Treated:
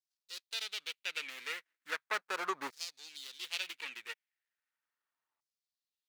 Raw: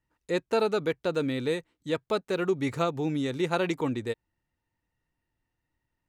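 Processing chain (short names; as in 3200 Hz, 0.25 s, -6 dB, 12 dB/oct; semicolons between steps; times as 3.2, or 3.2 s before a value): median filter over 41 samples; LFO high-pass saw down 0.37 Hz 1000–5300 Hz; gain +2.5 dB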